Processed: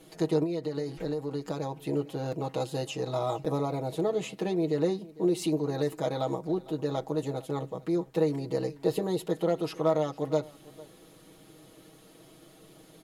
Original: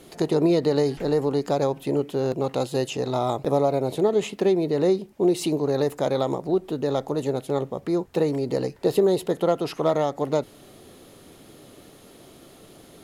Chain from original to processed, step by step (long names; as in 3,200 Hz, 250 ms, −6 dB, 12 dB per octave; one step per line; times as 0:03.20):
comb filter 6.3 ms, depth 82%
0:00.43–0:01.83: downward compressor 6 to 1, threshold −21 dBFS, peak gain reduction 9.5 dB
on a send: single-tap delay 453 ms −21 dB
on the sum: level −8 dB